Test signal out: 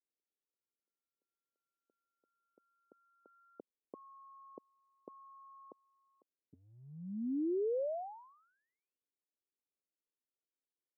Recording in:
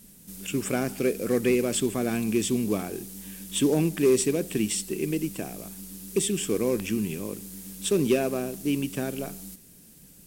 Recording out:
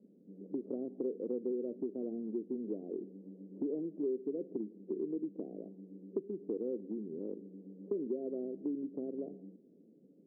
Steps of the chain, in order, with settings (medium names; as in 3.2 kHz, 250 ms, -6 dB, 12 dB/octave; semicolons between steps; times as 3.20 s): steep low-pass 520 Hz 36 dB/octave; compression 6:1, threshold -34 dBFS; high-pass 250 Hz 24 dB/octave; trim +1 dB